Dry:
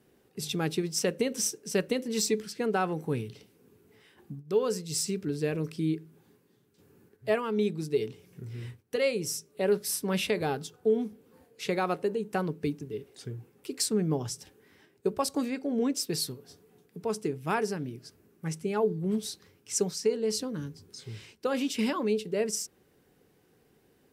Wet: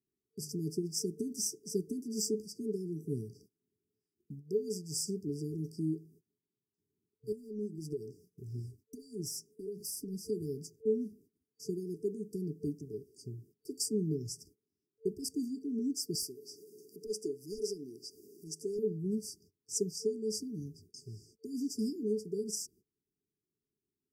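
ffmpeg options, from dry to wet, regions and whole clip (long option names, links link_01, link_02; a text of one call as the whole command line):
ffmpeg -i in.wav -filter_complex "[0:a]asettb=1/sr,asplit=3[link_01][link_02][link_03];[link_01]atrim=end=7.324[link_04];[link_02]atrim=start=7.32:end=10.29,asetpts=PTS-STARTPTS,afade=type=in:duration=0.004:curve=qsin,afade=type=out:start_time=2.966:duration=0.004:curve=qsin,acompressor=threshold=-31dB:ratio=12:attack=3.2:release=140:knee=1:detection=peak,aphaser=in_gain=1:out_gain=1:delay=4.9:decay=0.45:speed=1.6:type=triangular[link_05];[link_03]atrim=start=10.286[link_06];[link_04][link_05]acrossfade=duration=0.004:curve1=hsin:curve2=qsin[link_07];[link_07][link_06]acrossfade=duration=0.004:curve1=qsin:curve2=hsin,asettb=1/sr,asplit=3[link_08][link_09][link_10];[link_08]atrim=end=16.154[link_11];[link_09]atrim=start=16.15:end=18.79,asetpts=PTS-STARTPTS,afade=type=in:duration=0.004:curve=qsin,afade=type=out:start_time=2.636:duration=0.004:curve=qsin,bass=frequency=250:gain=-14,treble=frequency=4000:gain=-3,acompressor=mode=upward:threshold=-41dB:ratio=2.5:attack=3.2:release=140:knee=2.83:detection=peak,asplit=2[link_12][link_13];[link_13]highpass=frequency=720:poles=1,volume=15dB,asoftclip=type=tanh:threshold=-15dB[link_14];[link_12][link_14]amix=inputs=2:normalize=0,lowpass=frequency=6700:poles=1,volume=-6dB[link_15];[link_10]atrim=start=18.786[link_16];[link_11][link_15]acrossfade=duration=0.004:curve1=hsin:curve2=qsin[link_17];[link_17][link_16]acrossfade=duration=0.004:curve1=qsin:curve2=hsin,agate=range=-21dB:threshold=-54dB:ratio=16:detection=peak,afftfilt=real='re*(1-between(b*sr/4096,450,4600))':imag='im*(1-between(b*sr/4096,450,4600))':win_size=4096:overlap=0.75,volume=-5dB" out.wav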